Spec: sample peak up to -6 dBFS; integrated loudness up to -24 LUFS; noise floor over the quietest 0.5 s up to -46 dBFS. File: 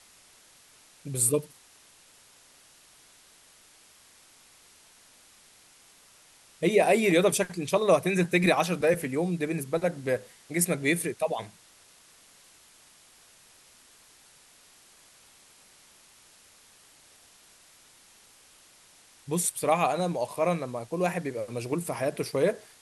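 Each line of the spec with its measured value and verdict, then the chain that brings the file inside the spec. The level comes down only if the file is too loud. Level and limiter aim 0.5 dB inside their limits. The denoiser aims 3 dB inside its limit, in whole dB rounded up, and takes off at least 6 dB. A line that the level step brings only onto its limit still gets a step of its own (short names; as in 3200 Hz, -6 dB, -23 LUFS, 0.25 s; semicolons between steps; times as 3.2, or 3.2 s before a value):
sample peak -9.0 dBFS: OK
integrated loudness -27.0 LUFS: OK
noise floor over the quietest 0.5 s -57 dBFS: OK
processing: none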